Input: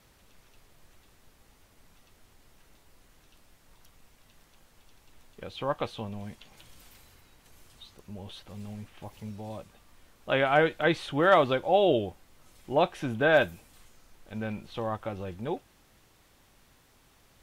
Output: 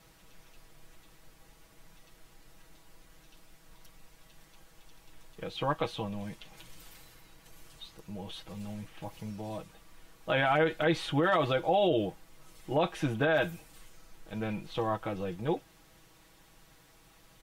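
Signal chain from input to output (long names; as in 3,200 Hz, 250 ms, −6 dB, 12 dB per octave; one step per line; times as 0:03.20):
comb filter 6.2 ms, depth 74%
brickwall limiter −18 dBFS, peak gain reduction 11 dB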